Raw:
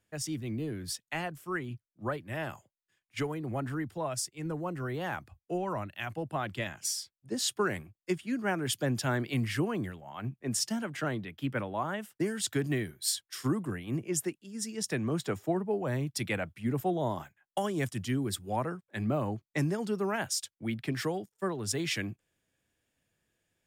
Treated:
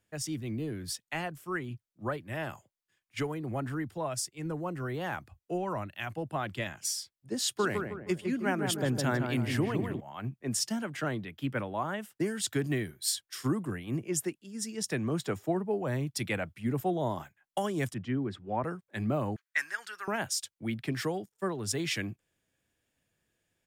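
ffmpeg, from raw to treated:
ffmpeg -i in.wav -filter_complex "[0:a]asplit=3[link_01][link_02][link_03];[link_01]afade=type=out:start_time=7.58:duration=0.02[link_04];[link_02]asplit=2[link_05][link_06];[link_06]adelay=157,lowpass=frequency=1300:poles=1,volume=-4dB,asplit=2[link_07][link_08];[link_08]adelay=157,lowpass=frequency=1300:poles=1,volume=0.48,asplit=2[link_09][link_10];[link_10]adelay=157,lowpass=frequency=1300:poles=1,volume=0.48,asplit=2[link_11][link_12];[link_12]adelay=157,lowpass=frequency=1300:poles=1,volume=0.48,asplit=2[link_13][link_14];[link_14]adelay=157,lowpass=frequency=1300:poles=1,volume=0.48,asplit=2[link_15][link_16];[link_16]adelay=157,lowpass=frequency=1300:poles=1,volume=0.48[link_17];[link_05][link_07][link_09][link_11][link_13][link_15][link_17]amix=inputs=7:normalize=0,afade=type=in:start_time=7.58:duration=0.02,afade=type=out:start_time=9.99:duration=0.02[link_18];[link_03]afade=type=in:start_time=9.99:duration=0.02[link_19];[link_04][link_18][link_19]amix=inputs=3:normalize=0,asettb=1/sr,asplit=3[link_20][link_21][link_22];[link_20]atrim=end=17.944[link_23];[link_21]atrim=start=17.94:end=18.64,asetpts=PTS-STARTPTS,afade=type=in:duration=0.004:curve=qsin,afade=type=out:start_time=0.696:duration=0.004:curve=qsin,highpass=110,lowpass=2100[link_24];[link_22]atrim=start=18.636[link_25];[link_23][link_24]acrossfade=duration=0.004:curve1=hsin:curve2=qsin[link_26];[link_26][link_25]acrossfade=duration=0.004:curve1=qsin:curve2=hsin,asettb=1/sr,asplit=3[link_27][link_28][link_29];[link_27]atrim=end=19.364[link_30];[link_28]atrim=start=19.36:end=20.08,asetpts=PTS-STARTPTS,afade=type=in:duration=0.004:curve=qsin,afade=type=out:start_time=0.716:duration=0.004:curve=qsin,highpass=frequency=1600:width_type=q:width=4.7[link_31];[link_29]atrim=start=20.076[link_32];[link_30][link_31]acrossfade=duration=0.004:curve1=hsin:curve2=qsin[link_33];[link_33][link_32]acrossfade=duration=0.004:curve1=qsin:curve2=hsin" out.wav

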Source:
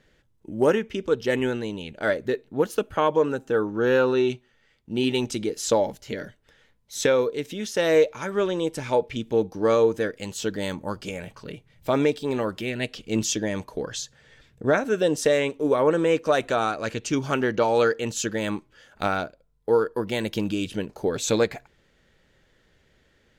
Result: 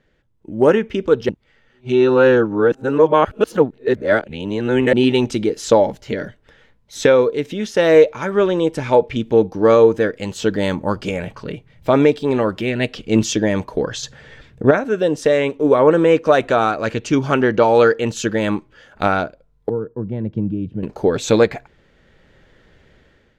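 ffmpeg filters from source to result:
ffmpeg -i in.wav -filter_complex "[0:a]asettb=1/sr,asplit=3[link_01][link_02][link_03];[link_01]atrim=end=14.034[link_04];[link_02]atrim=start=14.03:end=14.71,asetpts=PTS-STARTPTS,afade=type=in:duration=0.004:curve=qsin,afade=type=out:start_time=0.676:duration=0.004:curve=qsin,acontrast=82[link_05];[link_03]atrim=start=14.706[link_06];[link_04][link_05]acrossfade=duration=0.004:curve1=hsin:curve2=qsin[link_07];[link_07][link_06]acrossfade=duration=0.004:curve1=qsin:curve2=hsin,asettb=1/sr,asplit=3[link_08][link_09][link_10];[link_08]atrim=end=19.694[link_11];[link_09]atrim=start=19.69:end=20.83,asetpts=PTS-STARTPTS,afade=type=in:duration=0.004:curve=qsin,afade=type=out:start_time=1.136:duration=0.004:curve=qsin,bandpass=frequency=130:width_type=q:width=1.4[link_12];[link_10]atrim=start=20.826[link_13];[link_11][link_12]acrossfade=duration=0.004:curve1=hsin:curve2=qsin[link_14];[link_14][link_13]acrossfade=duration=0.004:curve1=qsin:curve2=hsin,asplit=3[link_15][link_16][link_17];[link_15]atrim=end=1.292[link_18];[link_16]atrim=start=1.288:end=4.932,asetpts=PTS-STARTPTS,areverse[link_19];[link_17]atrim=start=4.928[link_20];[link_18][link_19]acrossfade=duration=0.004:curve1=hsin:curve2=hsin[link_21];[link_21][link_20]acrossfade=duration=0.004:curve1=hsin:curve2=hsin,dynaudnorm=framelen=210:gausssize=5:maxgain=11.5dB,lowpass=frequency=2500:poles=1" out.wav

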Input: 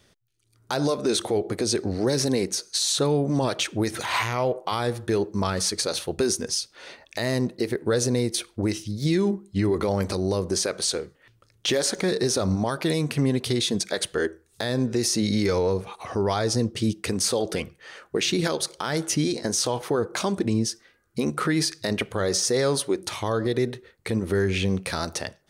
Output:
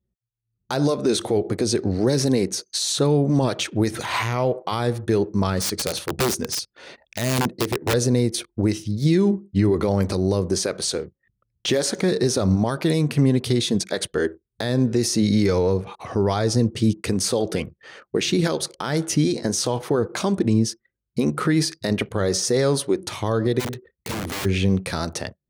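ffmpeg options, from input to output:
ffmpeg -i in.wav -filter_complex "[0:a]asettb=1/sr,asplit=3[link_01][link_02][link_03];[link_01]atrim=end=5.604[link_04];[link_02]atrim=start=5.6:end=7.94,asetpts=PTS-STARTPTS,afade=type=in:duration=0.004:curve=qsin,afade=type=out:start_time=2.336:duration=0.004:curve=qsin,aeval=exprs='(mod(7.08*val(0)+1,2)-1)/7.08':channel_layout=same[link_05];[link_03]atrim=start=7.936[link_06];[link_04][link_05]acrossfade=duration=0.004:curve1=hsin:curve2=qsin[link_07];[link_07][link_06]acrossfade=duration=0.004:curve1=qsin:curve2=hsin,asplit=3[link_08][link_09][link_10];[link_08]afade=type=out:start_time=23.59:duration=0.02[link_11];[link_09]aeval=exprs='(mod(16.8*val(0)+1,2)-1)/16.8':channel_layout=same,afade=type=in:start_time=23.59:duration=0.02,afade=type=out:start_time=24.44:duration=0.02[link_12];[link_10]afade=type=in:start_time=24.44:duration=0.02[link_13];[link_11][link_12][link_13]amix=inputs=3:normalize=0,anlmdn=0.0251,highpass=72,lowshelf=frequency=360:gain=7" out.wav

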